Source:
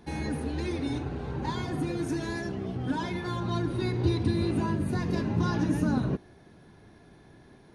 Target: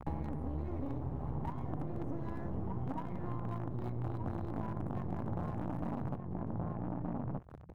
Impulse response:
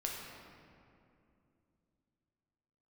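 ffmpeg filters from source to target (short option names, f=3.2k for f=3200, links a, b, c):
-filter_complex "[0:a]highpass=79,asoftclip=type=hard:threshold=-26.5dB,aecho=1:1:1:0.63,acrossover=split=110[a][b];[b]acrusher=bits=5:dc=4:mix=0:aa=0.000001[c];[a][c]amix=inputs=2:normalize=0,asplit=2[d][e];[e]adelay=1224,volume=-7dB,highshelf=f=4k:g=-27.6[f];[d][f]amix=inputs=2:normalize=0,acompressor=threshold=-45dB:ratio=8,firequalizer=gain_entry='entry(780,0);entry(2000,-16);entry(4600,-29)':delay=0.05:min_phase=1,volume=11dB"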